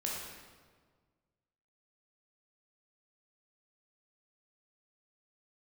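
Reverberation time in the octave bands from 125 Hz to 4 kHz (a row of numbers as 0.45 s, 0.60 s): 2.1 s, 1.8 s, 1.7 s, 1.5 s, 1.3 s, 1.1 s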